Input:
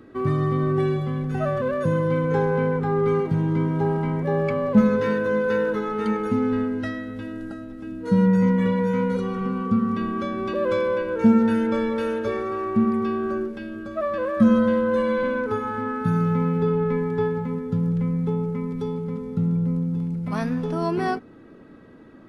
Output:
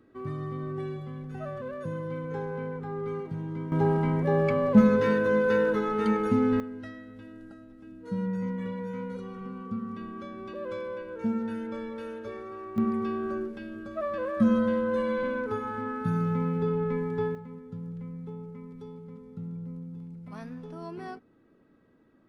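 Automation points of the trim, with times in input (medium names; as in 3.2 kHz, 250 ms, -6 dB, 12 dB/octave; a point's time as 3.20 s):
-12.5 dB
from 3.72 s -1.5 dB
from 6.60 s -13 dB
from 12.78 s -6 dB
from 17.35 s -15.5 dB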